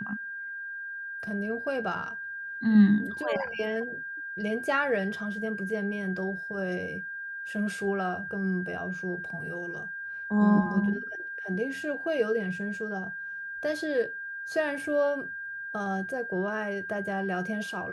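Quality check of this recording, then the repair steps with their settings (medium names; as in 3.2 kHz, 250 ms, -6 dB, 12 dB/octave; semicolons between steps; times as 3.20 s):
whine 1.6 kHz -35 dBFS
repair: band-stop 1.6 kHz, Q 30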